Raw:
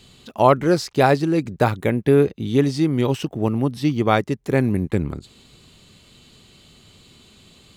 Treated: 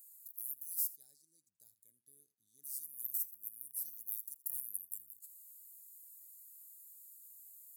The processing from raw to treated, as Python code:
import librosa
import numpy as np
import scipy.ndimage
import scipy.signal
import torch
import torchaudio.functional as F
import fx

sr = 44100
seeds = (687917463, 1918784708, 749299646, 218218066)

y = scipy.signal.sosfilt(scipy.signal.cheby2(4, 80, 2900.0, 'highpass', fs=sr, output='sos'), x)
y = fx.rider(y, sr, range_db=3, speed_s=2.0)
y = fx.air_absorb(y, sr, metres=120.0, at=(0.94, 2.63), fade=0.02)
y = y + 10.0 ** (-19.0 / 20.0) * np.pad(y, (int(81 * sr / 1000.0), 0))[:len(y)]
y = F.gain(torch.from_numpy(y), 17.5).numpy()